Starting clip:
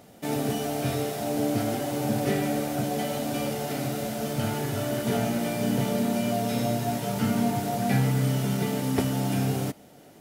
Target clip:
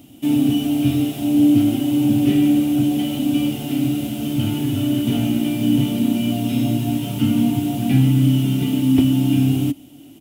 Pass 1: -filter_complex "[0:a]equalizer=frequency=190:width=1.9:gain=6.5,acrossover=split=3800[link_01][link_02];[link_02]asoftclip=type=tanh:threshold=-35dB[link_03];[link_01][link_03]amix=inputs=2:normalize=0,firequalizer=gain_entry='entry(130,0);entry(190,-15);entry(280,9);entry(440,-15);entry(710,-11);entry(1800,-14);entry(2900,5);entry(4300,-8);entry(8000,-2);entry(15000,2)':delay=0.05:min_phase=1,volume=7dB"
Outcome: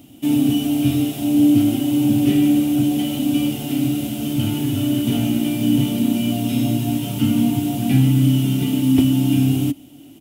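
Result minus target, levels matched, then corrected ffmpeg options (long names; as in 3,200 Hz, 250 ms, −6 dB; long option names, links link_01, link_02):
soft clipping: distortion −9 dB
-filter_complex "[0:a]equalizer=frequency=190:width=1.9:gain=6.5,acrossover=split=3800[link_01][link_02];[link_02]asoftclip=type=tanh:threshold=-43dB[link_03];[link_01][link_03]amix=inputs=2:normalize=0,firequalizer=gain_entry='entry(130,0);entry(190,-15);entry(280,9);entry(440,-15);entry(710,-11);entry(1800,-14);entry(2900,5);entry(4300,-8);entry(8000,-2);entry(15000,2)':delay=0.05:min_phase=1,volume=7dB"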